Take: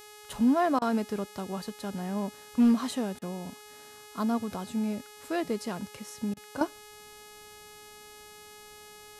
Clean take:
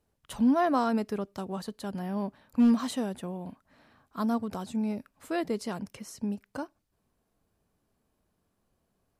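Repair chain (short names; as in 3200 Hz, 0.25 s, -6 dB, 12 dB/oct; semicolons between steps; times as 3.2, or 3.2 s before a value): de-hum 420.2 Hz, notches 32; interpolate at 0.79/3.19/6.34, 26 ms; gain 0 dB, from 6.61 s -11.5 dB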